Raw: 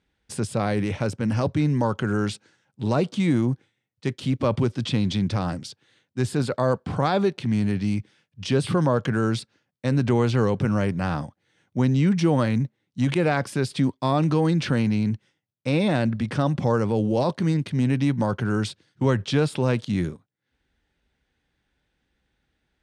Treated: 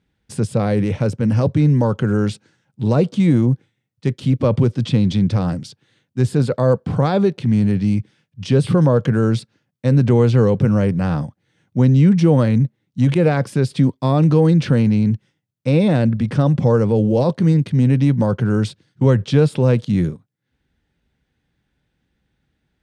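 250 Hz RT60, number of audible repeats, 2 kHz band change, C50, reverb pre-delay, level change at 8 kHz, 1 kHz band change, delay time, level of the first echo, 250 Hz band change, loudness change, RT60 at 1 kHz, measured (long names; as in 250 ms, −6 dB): no reverb audible, no echo audible, 0.0 dB, no reverb audible, no reverb audible, can't be measured, +1.0 dB, no echo audible, no echo audible, +6.5 dB, +7.0 dB, no reverb audible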